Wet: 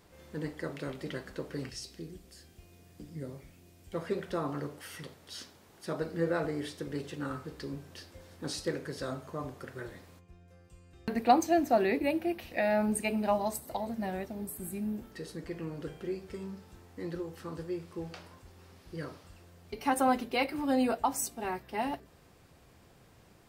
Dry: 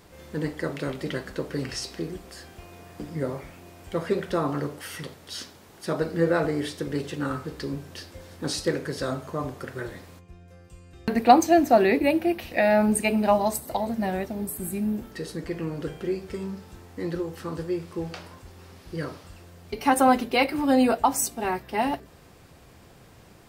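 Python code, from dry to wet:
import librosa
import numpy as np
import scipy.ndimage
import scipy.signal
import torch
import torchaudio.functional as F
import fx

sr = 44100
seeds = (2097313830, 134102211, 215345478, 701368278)

y = fx.peak_eq(x, sr, hz=1000.0, db=-12.0, octaves=2.4, at=(1.69, 3.93))
y = y * librosa.db_to_amplitude(-8.0)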